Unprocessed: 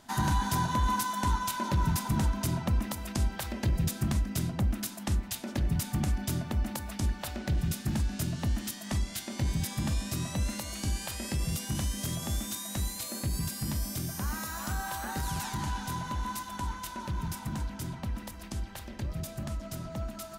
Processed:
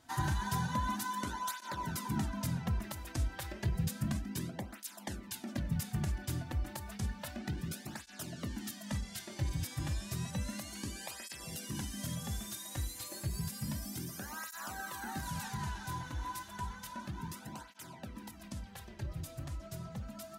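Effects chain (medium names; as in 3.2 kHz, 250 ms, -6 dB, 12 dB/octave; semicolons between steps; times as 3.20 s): dynamic bell 1.7 kHz, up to +4 dB, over -53 dBFS, Q 3.6; cancelling through-zero flanger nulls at 0.31 Hz, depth 5.1 ms; trim -3.5 dB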